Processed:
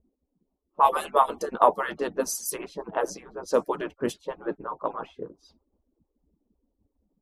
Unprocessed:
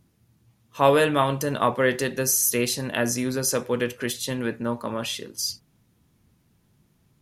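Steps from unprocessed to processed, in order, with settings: median-filter separation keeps percussive; graphic EQ 500/1000/2000/4000/8000 Hz +4/+8/-11/-6/-4 dB; harmoniser -4 st -12 dB; low-pass opened by the level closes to 370 Hz, open at -21 dBFS

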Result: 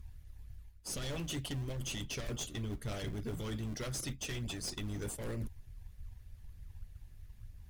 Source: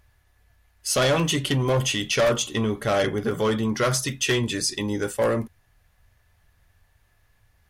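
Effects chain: dynamic EQ 210 Hz, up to -5 dB, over -36 dBFS, Q 0.73; harmonic-percussive split harmonic -10 dB; passive tone stack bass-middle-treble 10-0-1; reverse; compressor 6:1, threshold -59 dBFS, peak gain reduction 16.5 dB; reverse; sine folder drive 6 dB, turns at -47.5 dBFS; in parallel at -9 dB: decimation with a swept rate 35×, swing 100% 3.3 Hz; on the sum: gain +12.5 dB

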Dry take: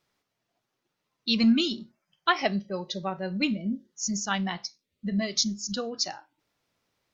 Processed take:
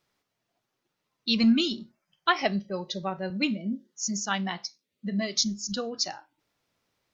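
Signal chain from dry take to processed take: 3.3–5.39 HPF 160 Hz

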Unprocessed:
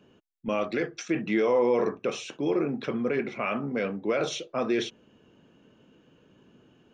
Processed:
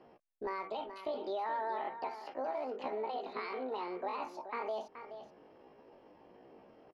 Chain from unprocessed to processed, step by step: compressor 3:1, threshold -38 dBFS, peak gain reduction 13.5 dB; pitch shift +10.5 st; air absorption 370 m; echo 0.426 s -10.5 dB; gain +1 dB

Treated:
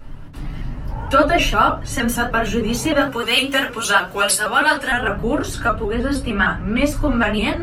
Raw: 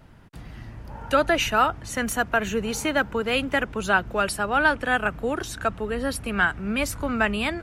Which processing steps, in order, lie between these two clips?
3.01–4.91 tilt +3.5 dB/oct; reverb RT60 0.25 s, pre-delay 3 ms, DRR -6.5 dB; in parallel at -1.5 dB: compressor, threshold -21 dBFS, peak gain reduction 17 dB; 5.94–6.96 on the sum: high shelf 9600 Hz -10.5 dB; shaped vibrato saw up 6.5 Hz, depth 100 cents; gain -7 dB

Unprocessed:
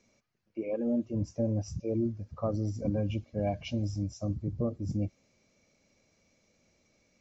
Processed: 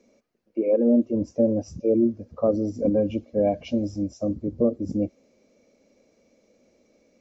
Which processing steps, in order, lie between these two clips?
graphic EQ 125/250/500 Hz -7/+10/+12 dB

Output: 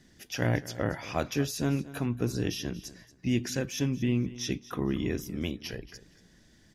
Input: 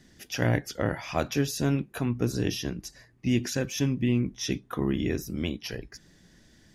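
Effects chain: feedback echo 0.232 s, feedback 23%, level -17 dB; gain -2.5 dB

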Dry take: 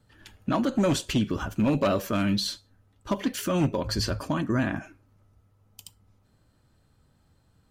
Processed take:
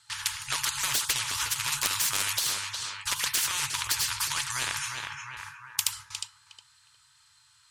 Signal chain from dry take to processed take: gate with hold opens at -51 dBFS; weighting filter ITU-R 468; FFT band-reject 150–850 Hz; 1.72–2.33 bell 8100 Hz +12 dB 1.1 oct; compressor, threshold -24 dBFS, peak gain reduction 8.5 dB; soft clip -11 dBFS, distortion -30 dB; tape echo 0.359 s, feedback 33%, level -13 dB, low-pass 1700 Hz; spectral compressor 4:1; gain +6 dB

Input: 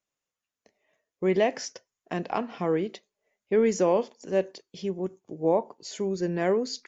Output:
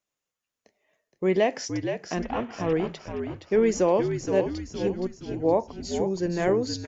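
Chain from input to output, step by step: 2.23–2.73 CVSD 16 kbps; on a send: frequency-shifting echo 0.469 s, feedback 49%, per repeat -71 Hz, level -7 dB; on the sum: gain +1 dB

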